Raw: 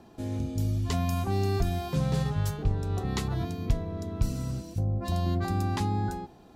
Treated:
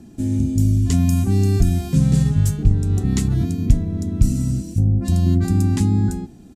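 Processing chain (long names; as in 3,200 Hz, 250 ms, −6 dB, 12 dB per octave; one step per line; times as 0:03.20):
low-shelf EQ 220 Hz +7 dB
downsampling to 32,000 Hz
octave-band graphic EQ 250/500/1,000/4,000/8,000 Hz +8/−7/−11/−5/+10 dB
level +5 dB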